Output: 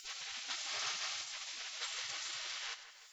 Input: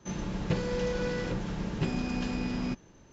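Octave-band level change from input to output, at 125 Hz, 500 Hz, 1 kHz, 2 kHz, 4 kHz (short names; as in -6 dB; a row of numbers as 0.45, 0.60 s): under -40 dB, -26.0 dB, -7.5 dB, -2.5 dB, +5.5 dB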